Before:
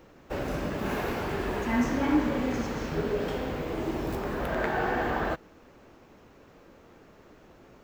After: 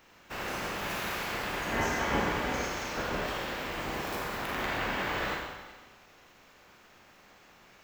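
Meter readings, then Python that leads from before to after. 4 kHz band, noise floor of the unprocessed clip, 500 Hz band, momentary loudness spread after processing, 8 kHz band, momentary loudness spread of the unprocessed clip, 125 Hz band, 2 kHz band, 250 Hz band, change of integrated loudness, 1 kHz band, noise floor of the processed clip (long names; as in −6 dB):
+6.0 dB, −55 dBFS, −5.5 dB, 8 LU, +6.0 dB, 7 LU, −5.5 dB, +2.0 dB, −9.5 dB, −2.5 dB, −0.5 dB, −58 dBFS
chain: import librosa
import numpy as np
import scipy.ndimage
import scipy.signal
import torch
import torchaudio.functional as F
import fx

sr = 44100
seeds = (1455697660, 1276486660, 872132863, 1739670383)

p1 = fx.spec_clip(x, sr, under_db=20)
p2 = p1 + fx.echo_single(p1, sr, ms=368, db=-18.5, dry=0)
p3 = fx.rev_schroeder(p2, sr, rt60_s=1.1, comb_ms=31, drr_db=-1.0)
y = F.gain(torch.from_numpy(p3), -7.0).numpy()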